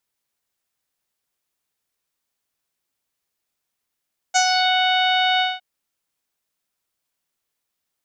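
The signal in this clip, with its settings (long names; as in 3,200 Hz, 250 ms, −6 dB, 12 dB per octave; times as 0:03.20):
subtractive voice saw F#5 24 dB per octave, low-pass 3,500 Hz, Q 4.3, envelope 1 octave, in 0.37 s, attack 21 ms, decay 0.08 s, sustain −4 dB, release 0.20 s, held 1.06 s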